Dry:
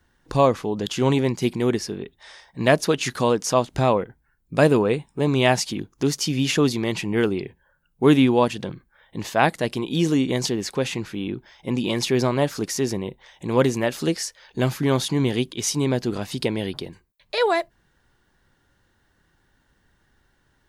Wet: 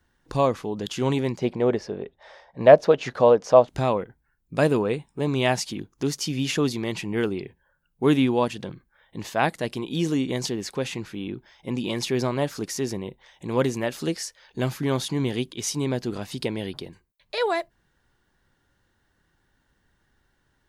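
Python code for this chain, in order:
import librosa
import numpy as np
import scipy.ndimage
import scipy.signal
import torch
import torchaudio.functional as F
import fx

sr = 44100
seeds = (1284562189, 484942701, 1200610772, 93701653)

y = fx.curve_eq(x, sr, hz=(340.0, 560.0, 1000.0, 5900.0, 9900.0), db=(0, 13, 4, -8, -19), at=(1.38, 3.68))
y = y * 10.0 ** (-4.0 / 20.0)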